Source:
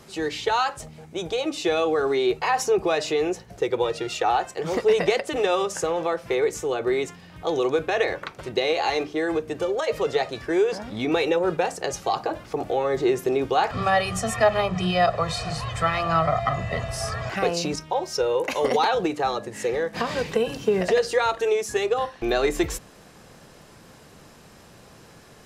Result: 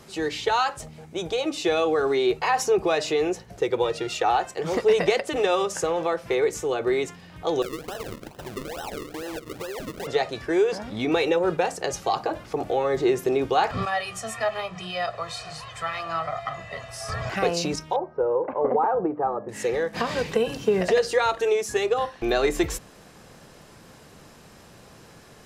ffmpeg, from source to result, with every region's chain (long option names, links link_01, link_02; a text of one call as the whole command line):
ffmpeg -i in.wav -filter_complex "[0:a]asettb=1/sr,asplit=3[link_01][link_02][link_03];[link_01]atrim=end=7.624[link_04];[link_02]atrim=start=7.62:end=10.07,asetpts=PTS-STARTPTS,afade=type=in:duration=0.004:curve=qsin,afade=type=out:start_time=2.446:duration=0.004:curve=qsin,acompressor=threshold=-32dB:ratio=4:attack=3.2:release=140:knee=1:detection=peak,acrusher=samples=38:mix=1:aa=0.000001:lfo=1:lforange=38:lforate=2.3[link_05];[link_03]atrim=start=10.066[link_06];[link_04][link_05]acrossfade=duration=0.004:curve1=hsin:curve2=qsin[link_07];[link_07][link_06]acrossfade=duration=0.004:curve1=qsin:curve2=hsin,asettb=1/sr,asplit=3[link_08][link_09][link_10];[link_08]atrim=end=13.854[link_11];[link_09]atrim=start=13.85:end=17.09,asetpts=PTS-STARTPTS,afade=type=in:duration=0.004:curve=qsin,afade=type=out:start_time=3.236:duration=0.004:curve=qsin,flanger=delay=5.8:depth=3.4:regen=69:speed=1.1:shape=triangular,lowshelf=frequency=460:gain=-11[link_12];[link_10]atrim=start=17.086[link_13];[link_11][link_12]acrossfade=duration=0.004:curve1=hsin:curve2=qsin[link_14];[link_14][link_13]acrossfade=duration=0.004:curve1=qsin:curve2=hsin,asettb=1/sr,asplit=3[link_15][link_16][link_17];[link_15]atrim=end=17.964[link_18];[link_16]atrim=start=17.96:end=19.49,asetpts=PTS-STARTPTS,afade=type=in:duration=0.004:curve=qsin,afade=type=out:start_time=1.526:duration=0.004:curve=qsin,lowpass=frequency=1200:width=0.5412,lowpass=frequency=1200:width=1.3066,lowshelf=frequency=87:gain=-10.5[link_19];[link_17]atrim=start=19.486[link_20];[link_18][link_19]acrossfade=duration=0.004:curve1=hsin:curve2=qsin[link_21];[link_21][link_20]acrossfade=duration=0.004:curve1=qsin:curve2=hsin" out.wav